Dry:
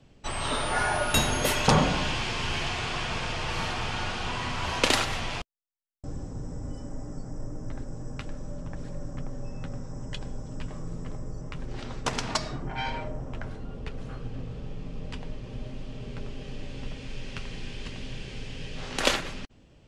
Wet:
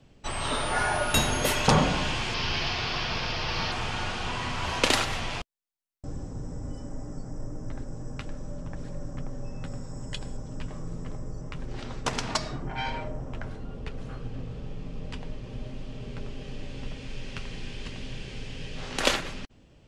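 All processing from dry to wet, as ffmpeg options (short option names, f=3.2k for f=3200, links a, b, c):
-filter_complex "[0:a]asettb=1/sr,asplit=3[a][b][c];[a]atrim=end=2.344[d];[b]atrim=start=2.34:end=3.72,asetpts=PTS-STARTPTS,afade=t=in:d=0.004:c=qsin,afade=t=out:st=1.376:d=0.004:c=qsin,acrusher=bits=8:mode=log:mix=0:aa=0.000001,highshelf=f=6.5k:t=q:w=3:g=-9[e];[c]atrim=start=3.716[f];[d][e]acrossfade=d=0.004:c1=hsin:c2=qsin[g];[g][f]acrossfade=d=0.004:c1=qsin:c2=hsin,asettb=1/sr,asplit=3[h][i][j];[h]atrim=end=9.644[k];[i]atrim=start=9.64:end=10.37,asetpts=PTS-STARTPTS,afade=t=in:d=0.004:c=qsin,afade=t=out:st=0.726:d=0.004:c=qsin,aemphasis=mode=production:type=cd,bandreject=f=6k:w=9.2[l];[j]atrim=start=10.366[m];[k][l]acrossfade=d=0.004:c1=hsin:c2=qsin[n];[n][m]acrossfade=d=0.004:c1=qsin:c2=hsin"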